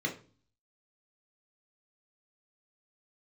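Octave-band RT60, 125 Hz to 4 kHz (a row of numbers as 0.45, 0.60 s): 0.70, 0.55, 0.40, 0.35, 0.35, 0.35 s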